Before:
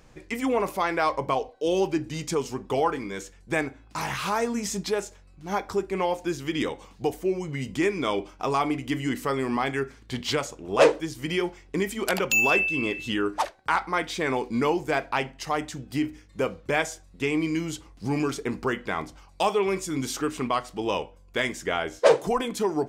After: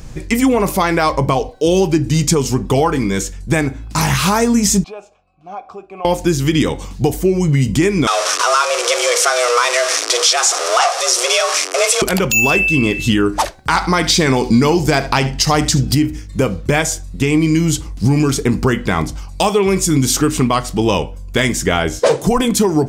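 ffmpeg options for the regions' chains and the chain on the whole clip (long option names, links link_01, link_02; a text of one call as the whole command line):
ffmpeg -i in.wav -filter_complex "[0:a]asettb=1/sr,asplit=3[link_01][link_02][link_03];[link_01]atrim=end=4.844[link_04];[link_02]atrim=start=4.84:end=6.05,asetpts=PTS-STARTPTS,afade=type=in:duration=0.004:curve=qsin,afade=type=out:start_time=1.206:duration=0.004:curve=qsin,asplit=3[link_05][link_06][link_07];[link_05]bandpass=frequency=730:width_type=q:width=8,volume=0dB[link_08];[link_06]bandpass=frequency=1090:width_type=q:width=8,volume=-6dB[link_09];[link_07]bandpass=frequency=2440:width_type=q:width=8,volume=-9dB[link_10];[link_08][link_09][link_10]amix=inputs=3:normalize=0,highshelf=frequency=4200:gain=-5,acompressor=threshold=-46dB:ratio=1.5:attack=3.2:release=140:knee=1:detection=peak[link_11];[link_03]atrim=start=6.046[link_12];[link_04][link_11]acrossfade=duration=0.004:curve1=hsin:curve2=qsin[link_13];[link_13][link_12]acrossfade=duration=0.004:curve1=qsin:curve2=hsin,asettb=1/sr,asplit=3[link_14][link_15][link_16];[link_14]atrim=end=8.074[link_17];[link_15]atrim=start=8.07:end=12.02,asetpts=PTS-STARTPTS,afade=type=in:duration=0.004:curve=qsin,afade=type=out:start_time=3.946:duration=0.004:curve=qsin,aeval=exprs='val(0)+0.5*0.0562*sgn(val(0))':channel_layout=same,highpass=250,equalizer=frequency=330:width_type=q:width=4:gain=-7,equalizer=frequency=640:width_type=q:width=4:gain=-6,equalizer=frequency=970:width_type=q:width=4:gain=7,equalizer=frequency=5400:width_type=q:width=4:gain=7,lowpass=frequency=9300:width=0.5412,lowpass=frequency=9300:width=1.3066,afreqshift=240[link_18];[link_16]atrim=start=12.016[link_19];[link_17][link_18]acrossfade=duration=0.004:curve1=hsin:curve2=qsin[link_20];[link_20][link_19]acrossfade=duration=0.004:curve1=qsin:curve2=hsin,asettb=1/sr,asplit=3[link_21][link_22][link_23];[link_21]atrim=end=13.694[link_24];[link_22]atrim=start=13.69:end=15.95,asetpts=PTS-STARTPTS,afade=type=in:duration=0.004:curve=qsin,afade=type=out:start_time=2.256:duration=0.004:curve=qsin,equalizer=frequency=4900:width=1.9:gain=7.5,acontrast=28,aecho=1:1:74:0.126,atrim=end_sample=99666[link_25];[link_23]atrim=start=15.946[link_26];[link_24][link_25]acrossfade=duration=0.004:curve1=hsin:curve2=qsin[link_27];[link_27][link_26]acrossfade=duration=0.004:curve1=qsin:curve2=hsin,bass=frequency=250:gain=12,treble=frequency=4000:gain=8,acompressor=threshold=-22dB:ratio=4,alimiter=level_in=13.5dB:limit=-1dB:release=50:level=0:latency=1,volume=-1.5dB" out.wav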